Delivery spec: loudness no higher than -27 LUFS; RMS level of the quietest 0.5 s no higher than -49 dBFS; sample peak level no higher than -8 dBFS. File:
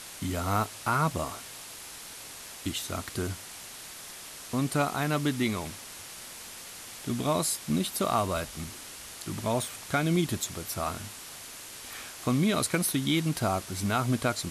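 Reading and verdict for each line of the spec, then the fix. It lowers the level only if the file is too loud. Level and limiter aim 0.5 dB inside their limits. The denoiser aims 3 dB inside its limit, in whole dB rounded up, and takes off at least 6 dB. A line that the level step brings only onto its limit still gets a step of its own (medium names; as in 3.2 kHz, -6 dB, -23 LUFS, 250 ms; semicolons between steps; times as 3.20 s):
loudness -30.0 LUFS: pass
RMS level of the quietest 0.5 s -44 dBFS: fail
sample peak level -13.5 dBFS: pass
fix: noise reduction 8 dB, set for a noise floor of -44 dBFS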